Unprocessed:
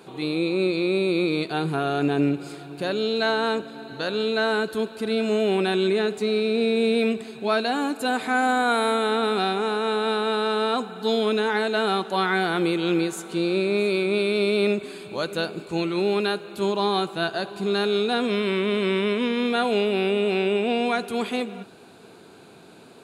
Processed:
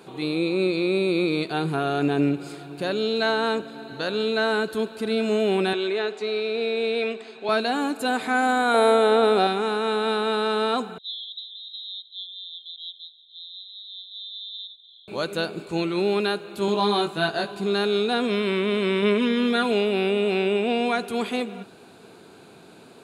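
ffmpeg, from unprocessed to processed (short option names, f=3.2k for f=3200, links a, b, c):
-filter_complex "[0:a]asettb=1/sr,asplit=3[a][b][c];[a]atrim=end=5.734[d];[b]atrim=start=5.73:end=7.49,asetpts=PTS-STARTPTS,afade=t=in:d=0.004:c=qsin,afade=t=out:st=1.756:d=0.004:c=qsin,highpass=420,lowpass=5.2k[e];[c]atrim=start=7.486[f];[d][e]acrossfade=d=0.004:c1=hsin:c2=qsin[g];[g][f]acrossfade=d=0.004:c1=qsin:c2=hsin,asettb=1/sr,asplit=3[h][i][j];[h]atrim=end=8.744[k];[i]atrim=start=8.74:end=9.47,asetpts=PTS-STARTPTS,afade=t=in:d=0.004:c=qsin,afade=t=out:st=0.726:d=0.004:c=qsin,equalizer=f=560:w=2:g=12[l];[j]atrim=start=9.466[m];[k][l]acrossfade=d=0.004:c1=hsin:c2=qsin[n];[n][m]acrossfade=d=0.004:c1=qsin:c2=hsin,asettb=1/sr,asplit=3[o][p][q];[o]atrim=end=10.984[r];[p]atrim=start=10.98:end=15.08,asetpts=PTS-STARTPTS,afade=t=in:d=0.004:c=qsin,afade=t=out:st=4.096:d=0.004:c=qsin,asuperpass=centerf=3600:order=20:qfactor=4.1[s];[q]atrim=start=15.076[t];[r][s]acrossfade=d=0.004:c1=hsin:c2=qsin[u];[u][t]acrossfade=d=0.004:c1=qsin:c2=hsin,asettb=1/sr,asplit=3[v][w][x];[v]atrim=end=16.664[y];[w]atrim=start=16.66:end=17.55,asetpts=PTS-STARTPTS,afade=t=in:d=0.004:c=qsin,afade=t=out:st=0.886:d=0.004:c=qsin,asplit=2[z][aa];[aa]adelay=19,volume=-3dB[ab];[z][ab]amix=inputs=2:normalize=0,atrim=end_sample=39249[ac];[x]atrim=start=17.546[ad];[y][ac]acrossfade=d=0.004:c1=hsin:c2=qsin[ae];[ae][ad]acrossfade=d=0.004:c1=qsin:c2=hsin,asettb=1/sr,asplit=3[af][ag][ah];[af]atrim=end=19.024[ai];[ag]atrim=start=19.02:end=19.72,asetpts=PTS-STARTPTS,afade=t=in:d=0.004:c=qsin,afade=t=out:st=0.696:d=0.004:c=qsin,aecho=1:1:4.8:0.53,atrim=end_sample=30870[aj];[ah]atrim=start=19.716[ak];[ai][aj]acrossfade=d=0.004:c1=hsin:c2=qsin[al];[al][ak]acrossfade=d=0.004:c1=qsin:c2=hsin"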